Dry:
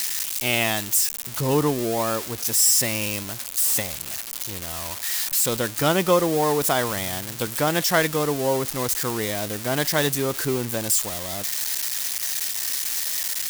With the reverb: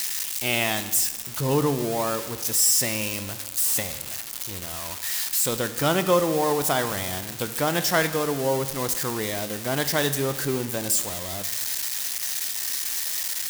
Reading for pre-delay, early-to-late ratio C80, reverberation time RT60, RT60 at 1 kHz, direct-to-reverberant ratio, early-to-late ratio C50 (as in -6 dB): 21 ms, 13.5 dB, 1.3 s, 1.3 s, 9.5 dB, 11.5 dB